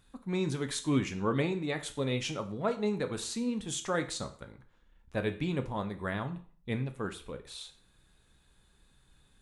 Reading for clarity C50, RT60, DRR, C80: 14.0 dB, 0.45 s, 7.5 dB, 18.0 dB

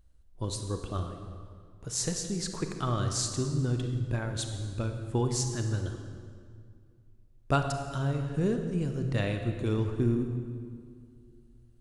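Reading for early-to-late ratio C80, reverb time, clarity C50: 7.0 dB, 2.2 s, 6.0 dB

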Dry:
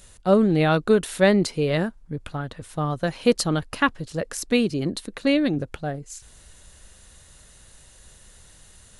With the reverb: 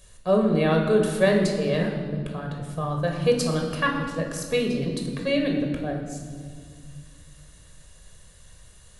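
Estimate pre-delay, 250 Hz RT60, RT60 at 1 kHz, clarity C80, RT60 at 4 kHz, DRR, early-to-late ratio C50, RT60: 19 ms, 2.9 s, 1.7 s, 6.5 dB, 1.4 s, 1.5 dB, 4.5 dB, 1.9 s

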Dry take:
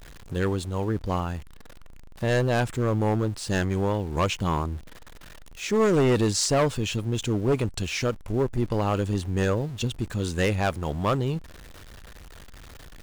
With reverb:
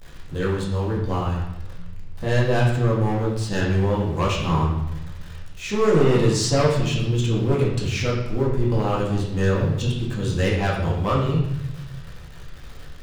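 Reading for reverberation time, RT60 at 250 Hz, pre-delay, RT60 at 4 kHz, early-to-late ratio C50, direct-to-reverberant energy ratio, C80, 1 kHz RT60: 0.90 s, 1.6 s, 4 ms, 0.90 s, 2.5 dB, -4.5 dB, 5.0 dB, 0.90 s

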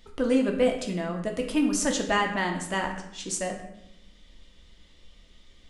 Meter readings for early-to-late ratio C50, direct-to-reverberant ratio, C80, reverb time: 7.5 dB, 2.0 dB, 10.0 dB, 0.80 s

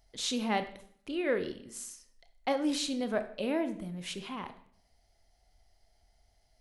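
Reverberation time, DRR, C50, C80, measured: 0.65 s, 9.0 dB, 11.5 dB, 15.5 dB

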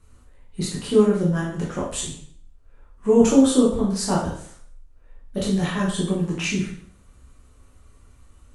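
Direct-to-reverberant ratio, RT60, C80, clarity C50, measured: -5.5 dB, 0.55 s, 8.0 dB, 3.5 dB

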